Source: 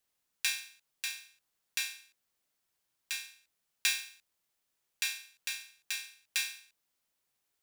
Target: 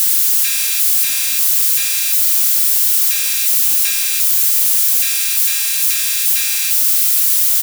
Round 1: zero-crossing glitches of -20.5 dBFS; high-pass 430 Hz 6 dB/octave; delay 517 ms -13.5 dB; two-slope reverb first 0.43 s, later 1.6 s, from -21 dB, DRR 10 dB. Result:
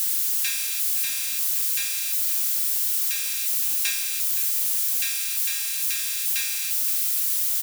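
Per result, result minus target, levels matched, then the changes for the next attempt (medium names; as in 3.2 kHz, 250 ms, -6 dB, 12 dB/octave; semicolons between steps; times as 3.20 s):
zero-crossing glitches: distortion -6 dB; 250 Hz band -3.5 dB
change: zero-crossing glitches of -10 dBFS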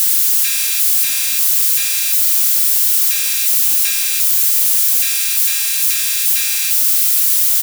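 250 Hz band -3.5 dB
change: high-pass 190 Hz 6 dB/octave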